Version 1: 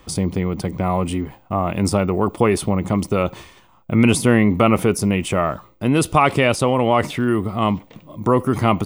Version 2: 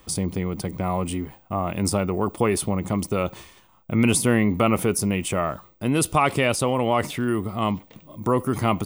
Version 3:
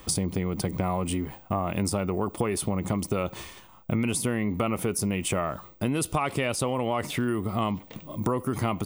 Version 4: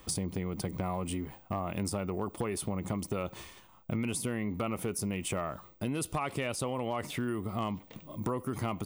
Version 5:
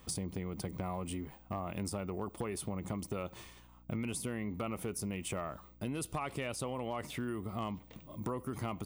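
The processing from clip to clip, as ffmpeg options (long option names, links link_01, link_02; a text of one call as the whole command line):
ffmpeg -i in.wav -af "highshelf=frequency=7100:gain=10,volume=-5dB" out.wav
ffmpeg -i in.wav -af "acompressor=threshold=-29dB:ratio=6,volume=5dB" out.wav
ffmpeg -i in.wav -af "asoftclip=type=hard:threshold=-17.5dB,volume=-6.5dB" out.wav
ffmpeg -i in.wav -af "aeval=exprs='val(0)+0.00178*(sin(2*PI*60*n/s)+sin(2*PI*2*60*n/s)/2+sin(2*PI*3*60*n/s)/3+sin(2*PI*4*60*n/s)/4+sin(2*PI*5*60*n/s)/5)':channel_layout=same,volume=-4.5dB" out.wav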